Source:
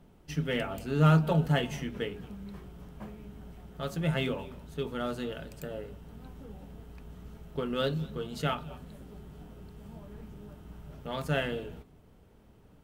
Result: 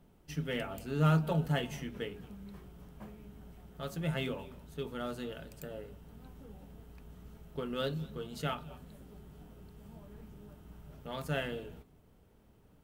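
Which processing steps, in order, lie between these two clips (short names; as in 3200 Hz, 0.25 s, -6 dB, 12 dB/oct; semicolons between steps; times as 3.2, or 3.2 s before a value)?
high shelf 9800 Hz +6.5 dB; gain -5 dB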